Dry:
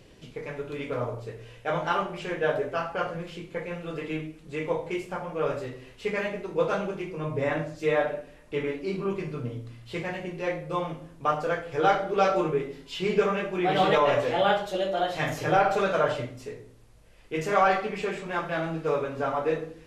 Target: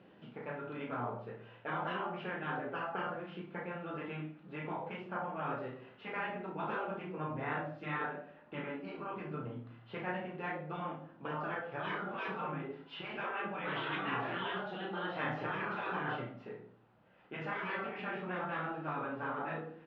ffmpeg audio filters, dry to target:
ffmpeg -i in.wav -filter_complex "[0:a]highpass=180,equalizer=frequency=200:width_type=q:width=4:gain=8,equalizer=frequency=450:width_type=q:width=4:gain=-3,equalizer=frequency=810:width_type=q:width=4:gain=6,equalizer=frequency=1400:width_type=q:width=4:gain=6,equalizer=frequency=2200:width_type=q:width=4:gain=-6,lowpass=frequency=2800:width=0.5412,lowpass=frequency=2800:width=1.3066,afftfilt=real='re*lt(hypot(re,im),0.178)':imag='im*lt(hypot(re,im),0.178)':win_size=1024:overlap=0.75,asplit=2[link_01][link_02];[link_02]adelay=33,volume=-6dB[link_03];[link_01][link_03]amix=inputs=2:normalize=0,volume=-5.5dB" out.wav

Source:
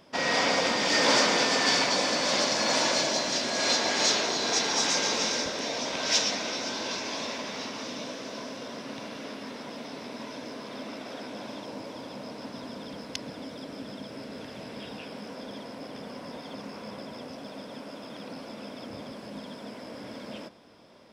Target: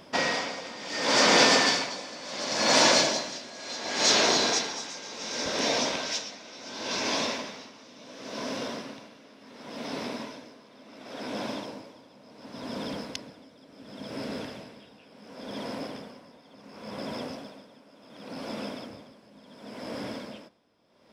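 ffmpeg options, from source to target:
ffmpeg -i in.wav -af "aeval=exprs='val(0)*pow(10,-20*(0.5-0.5*cos(2*PI*0.7*n/s))/20)':channel_layout=same,volume=6dB" out.wav

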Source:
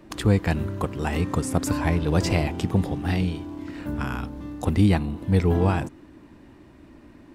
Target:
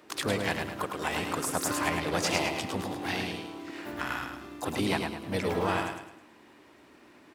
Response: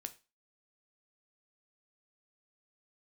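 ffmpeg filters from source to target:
-filter_complex "[0:a]highpass=frequency=900:poles=1,asplit=3[link_01][link_02][link_03];[link_02]asetrate=52444,aresample=44100,atempo=0.840896,volume=-9dB[link_04];[link_03]asetrate=58866,aresample=44100,atempo=0.749154,volume=-9dB[link_05];[link_01][link_04][link_05]amix=inputs=3:normalize=0,aecho=1:1:106|212|318|424|530:0.562|0.219|0.0855|0.0334|0.013"

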